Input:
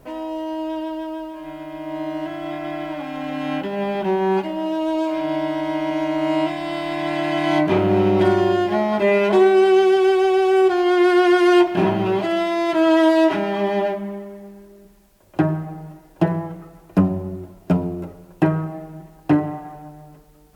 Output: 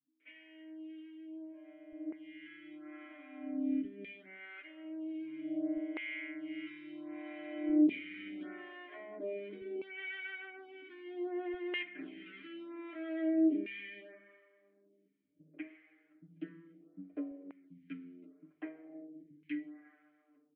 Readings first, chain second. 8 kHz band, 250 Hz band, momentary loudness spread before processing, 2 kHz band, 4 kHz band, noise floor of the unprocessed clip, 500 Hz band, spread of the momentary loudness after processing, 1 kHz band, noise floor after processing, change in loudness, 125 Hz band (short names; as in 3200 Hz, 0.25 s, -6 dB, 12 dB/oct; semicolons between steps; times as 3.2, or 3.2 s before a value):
n/a, -17.0 dB, 17 LU, -17.5 dB, -21.5 dB, -49 dBFS, -27.0 dB, 19 LU, -34.0 dB, -72 dBFS, -20.0 dB, under -35 dB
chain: vowel filter i; comb 6.7 ms, depth 83%; LFO band-pass saw down 0.52 Hz 460–2400 Hz; air absorption 250 m; bands offset in time lows, highs 0.2 s, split 160 Hz; photocell phaser 0.71 Hz; gain +7 dB